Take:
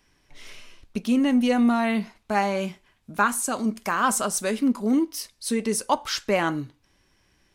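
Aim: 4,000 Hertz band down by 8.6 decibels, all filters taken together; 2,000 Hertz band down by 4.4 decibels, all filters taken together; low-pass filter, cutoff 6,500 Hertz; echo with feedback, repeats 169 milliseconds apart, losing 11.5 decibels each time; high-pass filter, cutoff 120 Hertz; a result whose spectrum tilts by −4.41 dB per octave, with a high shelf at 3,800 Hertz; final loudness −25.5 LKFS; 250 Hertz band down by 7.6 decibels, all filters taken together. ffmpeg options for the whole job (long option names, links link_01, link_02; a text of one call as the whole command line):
ffmpeg -i in.wav -af "highpass=120,lowpass=6500,equalizer=frequency=250:width_type=o:gain=-8,equalizer=frequency=2000:width_type=o:gain=-3.5,highshelf=frequency=3800:gain=-4.5,equalizer=frequency=4000:width_type=o:gain=-7,aecho=1:1:169|338|507:0.266|0.0718|0.0194,volume=3.5dB" out.wav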